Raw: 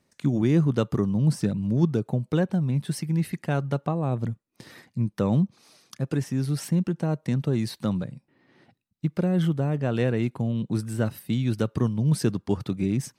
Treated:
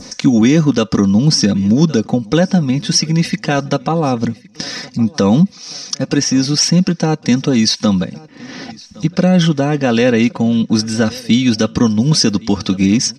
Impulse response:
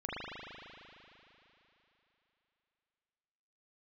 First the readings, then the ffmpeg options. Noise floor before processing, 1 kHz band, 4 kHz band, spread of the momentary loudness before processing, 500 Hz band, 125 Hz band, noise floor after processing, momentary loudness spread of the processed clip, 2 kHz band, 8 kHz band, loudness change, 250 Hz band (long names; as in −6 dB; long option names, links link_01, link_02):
−72 dBFS, +14.0 dB, +24.0 dB, 6 LU, +11.5 dB, +7.5 dB, −41 dBFS, 10 LU, +16.0 dB, +22.0 dB, +12.0 dB, +13.0 dB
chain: -af "adynamicequalizer=threshold=0.00562:dfrequency=2500:dqfactor=0.72:tfrequency=2500:tqfactor=0.72:attack=5:release=100:ratio=0.375:range=2:mode=boostabove:tftype=bell,lowpass=frequency=5600:width_type=q:width=7.2,acompressor=mode=upward:threshold=-30dB:ratio=2.5,aecho=1:1:4:0.65,aecho=1:1:1114|2228|3342:0.0668|0.0267|0.0107,alimiter=level_in=12.5dB:limit=-1dB:release=50:level=0:latency=1,volume=-1dB"